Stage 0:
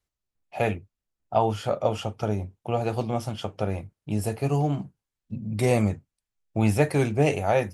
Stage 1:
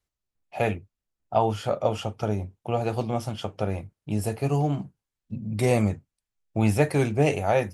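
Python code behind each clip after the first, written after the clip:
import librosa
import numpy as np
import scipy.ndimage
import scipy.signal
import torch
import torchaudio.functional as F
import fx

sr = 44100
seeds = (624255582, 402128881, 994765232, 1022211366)

y = x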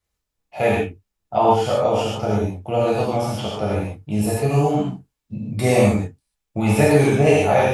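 y = fx.rev_gated(x, sr, seeds[0], gate_ms=170, shape='flat', drr_db=-7.0)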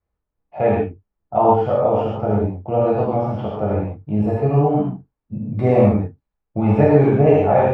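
y = scipy.signal.sosfilt(scipy.signal.butter(2, 1200.0, 'lowpass', fs=sr, output='sos'), x)
y = y * 10.0 ** (2.0 / 20.0)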